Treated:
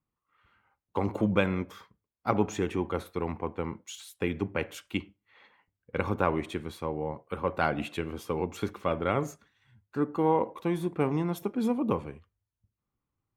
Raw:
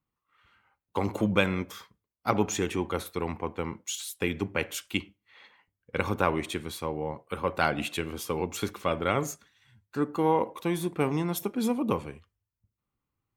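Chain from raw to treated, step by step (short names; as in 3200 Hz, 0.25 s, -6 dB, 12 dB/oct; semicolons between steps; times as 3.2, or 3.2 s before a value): high shelf 2900 Hz -12 dB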